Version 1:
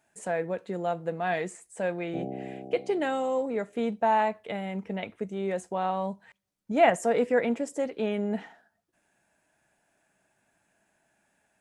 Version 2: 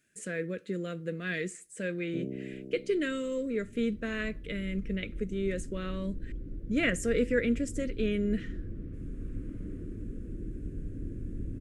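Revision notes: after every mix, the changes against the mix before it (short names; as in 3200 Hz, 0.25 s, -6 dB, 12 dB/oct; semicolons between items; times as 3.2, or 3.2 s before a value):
speech: send +6.0 dB; second sound: unmuted; master: add Butterworth band-stop 820 Hz, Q 0.77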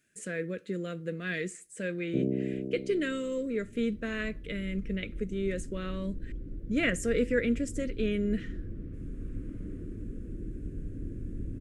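first sound +8.0 dB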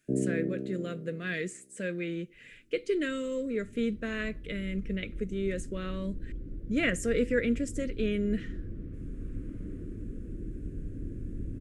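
first sound: entry -2.05 s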